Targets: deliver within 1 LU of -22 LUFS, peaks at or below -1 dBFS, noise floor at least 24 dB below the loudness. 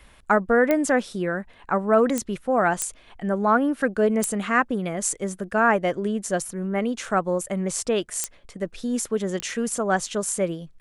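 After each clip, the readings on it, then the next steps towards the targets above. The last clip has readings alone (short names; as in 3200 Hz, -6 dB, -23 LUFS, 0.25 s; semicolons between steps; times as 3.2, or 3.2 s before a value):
clicks 6; loudness -24.0 LUFS; peak -6.0 dBFS; loudness target -22.0 LUFS
-> de-click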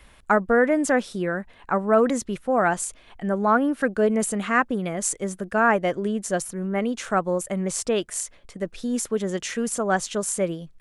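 clicks 0; loudness -24.0 LUFS; peak -6.0 dBFS; loudness target -22.0 LUFS
-> gain +2 dB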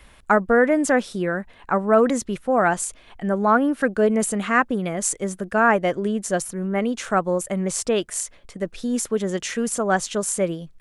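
loudness -22.0 LUFS; peak -4.0 dBFS; noise floor -51 dBFS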